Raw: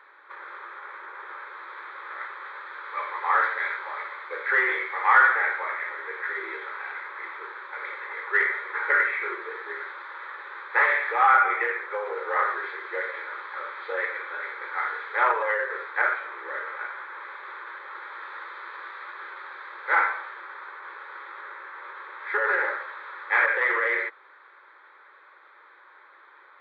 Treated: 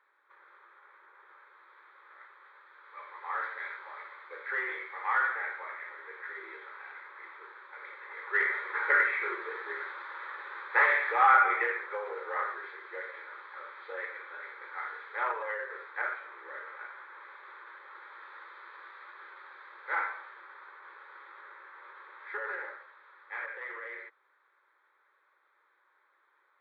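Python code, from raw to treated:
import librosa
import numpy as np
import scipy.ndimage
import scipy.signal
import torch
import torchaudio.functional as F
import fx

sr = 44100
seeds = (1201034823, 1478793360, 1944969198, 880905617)

y = fx.gain(x, sr, db=fx.line((2.72, -17.5), (3.59, -11.0), (7.98, -11.0), (8.57, -3.0), (11.57, -3.0), (12.58, -10.0), (22.2, -10.0), (22.93, -17.5)))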